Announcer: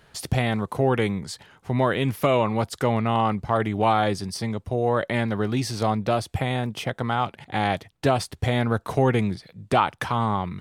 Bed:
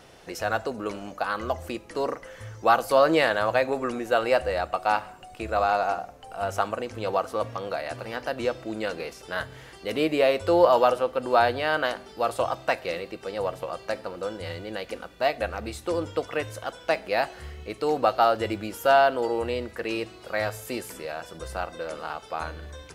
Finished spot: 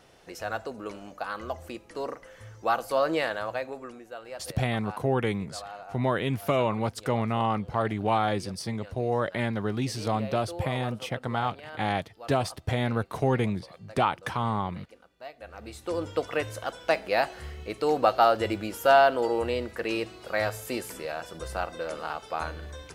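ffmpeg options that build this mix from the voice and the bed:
-filter_complex "[0:a]adelay=4250,volume=-4.5dB[a];[1:a]volume=12.5dB,afade=t=out:st=3.17:d=0.97:silence=0.237137,afade=t=in:st=15.4:d=0.84:silence=0.11885[b];[a][b]amix=inputs=2:normalize=0"

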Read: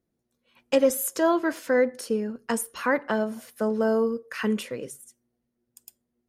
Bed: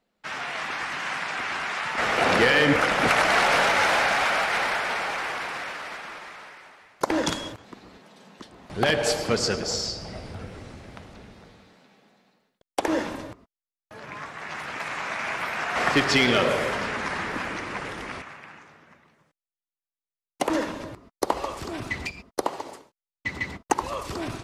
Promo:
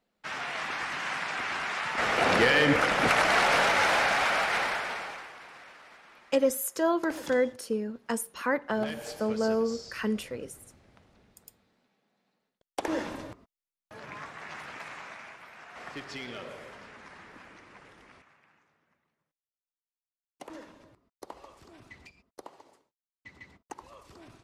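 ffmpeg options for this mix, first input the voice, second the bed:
-filter_complex "[0:a]adelay=5600,volume=-4dB[a];[1:a]volume=10dB,afade=t=out:st=4.56:d=0.74:silence=0.211349,afade=t=in:st=12.07:d=1.25:silence=0.223872,afade=t=out:st=13.99:d=1.39:silence=0.149624[b];[a][b]amix=inputs=2:normalize=0"

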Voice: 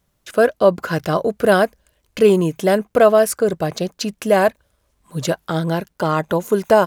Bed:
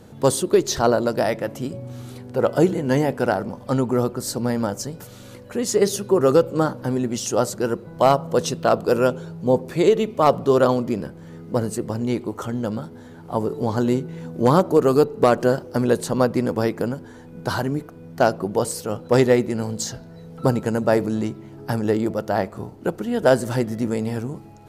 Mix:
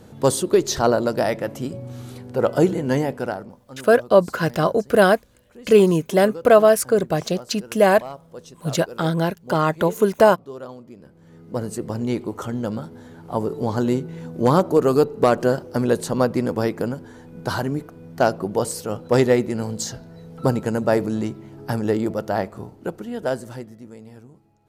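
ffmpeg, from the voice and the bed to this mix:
-filter_complex "[0:a]adelay=3500,volume=-0.5dB[a];[1:a]volume=18.5dB,afade=t=out:st=2.82:d=0.83:silence=0.112202,afade=t=in:st=10.98:d=1.01:silence=0.11885,afade=t=out:st=22.23:d=1.56:silence=0.141254[b];[a][b]amix=inputs=2:normalize=0"

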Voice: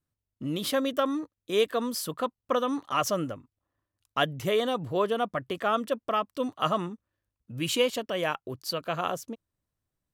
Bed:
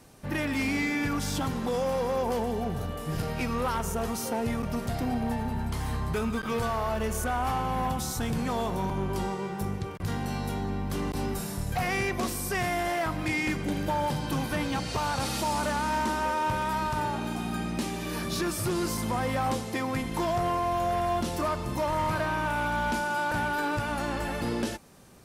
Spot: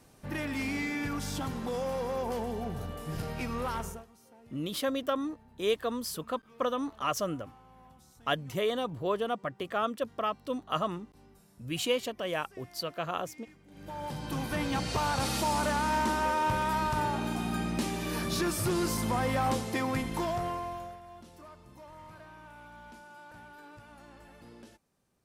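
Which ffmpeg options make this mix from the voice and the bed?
-filter_complex "[0:a]adelay=4100,volume=-4dB[a];[1:a]volume=22dB,afade=t=out:st=3.8:d=0.25:silence=0.0749894,afade=t=in:st=13.7:d=1.12:silence=0.0446684,afade=t=out:st=19.89:d=1.1:silence=0.0841395[b];[a][b]amix=inputs=2:normalize=0"

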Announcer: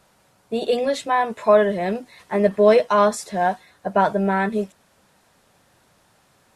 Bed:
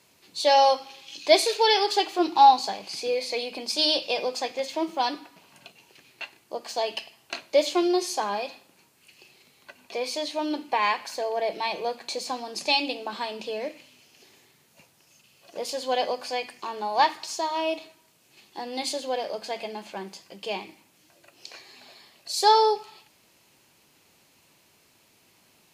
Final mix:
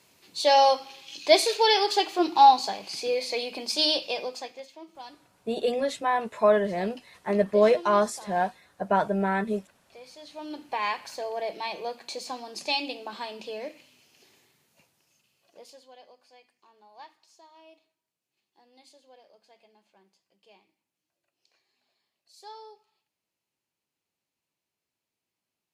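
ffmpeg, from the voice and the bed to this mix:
-filter_complex "[0:a]adelay=4950,volume=-5.5dB[a];[1:a]volume=13dB,afade=t=out:st=3.82:d=0.9:silence=0.133352,afade=t=in:st=10.18:d=0.69:silence=0.211349,afade=t=out:st=14.27:d=1.65:silence=0.0794328[b];[a][b]amix=inputs=2:normalize=0"

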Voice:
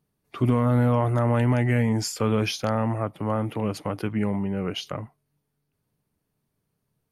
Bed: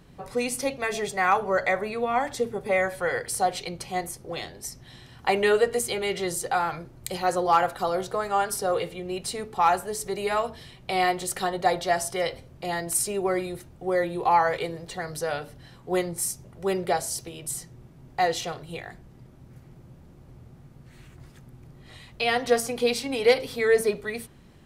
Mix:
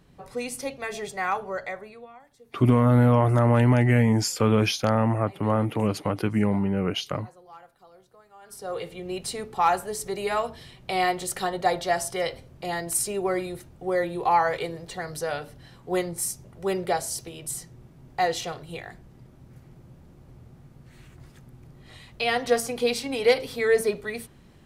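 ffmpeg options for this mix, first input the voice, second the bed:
-filter_complex "[0:a]adelay=2200,volume=2.5dB[a];[1:a]volume=22dB,afade=t=out:st=1.24:d=0.95:silence=0.0749894,afade=t=in:st=8.41:d=0.69:silence=0.0473151[b];[a][b]amix=inputs=2:normalize=0"

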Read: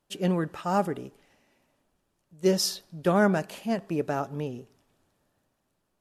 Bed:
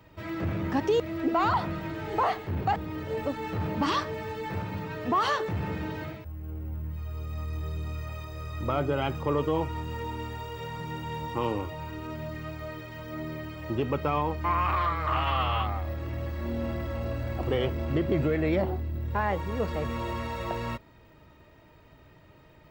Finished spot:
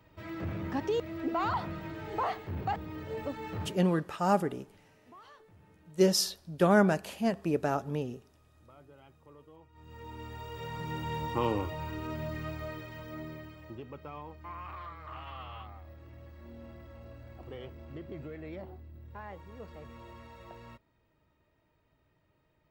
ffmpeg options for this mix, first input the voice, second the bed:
-filter_complex "[0:a]adelay=3550,volume=-1dB[a];[1:a]volume=22dB,afade=t=out:st=3.61:d=0.2:silence=0.0749894,afade=t=in:st=9.72:d=1.3:silence=0.0398107,afade=t=out:st=12.46:d=1.37:silence=0.149624[b];[a][b]amix=inputs=2:normalize=0"

